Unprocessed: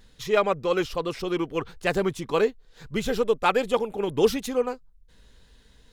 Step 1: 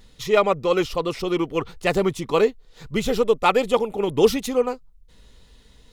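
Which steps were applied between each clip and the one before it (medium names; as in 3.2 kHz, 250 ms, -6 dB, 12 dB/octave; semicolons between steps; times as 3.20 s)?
band-stop 1.6 kHz, Q 6.6; trim +4 dB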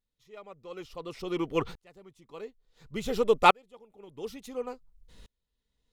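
sawtooth tremolo in dB swelling 0.57 Hz, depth 38 dB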